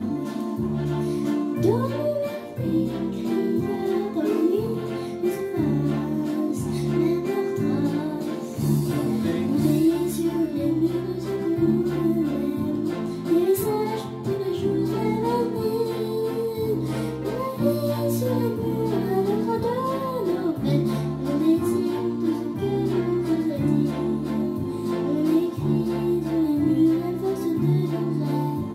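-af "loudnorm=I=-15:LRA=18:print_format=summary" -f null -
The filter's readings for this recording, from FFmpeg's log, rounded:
Input Integrated:    -24.2 LUFS
Input True Peak:      -8.5 dBTP
Input LRA:             1.9 LU
Input Threshold:     -34.2 LUFS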